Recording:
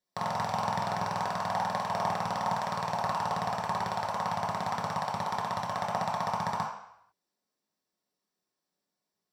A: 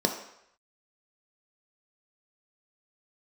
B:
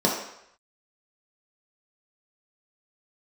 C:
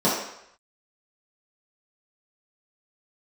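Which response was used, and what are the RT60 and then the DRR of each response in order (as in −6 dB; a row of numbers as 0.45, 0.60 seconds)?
B; 0.75, 0.75, 0.75 seconds; 3.0, −3.5, −9.5 decibels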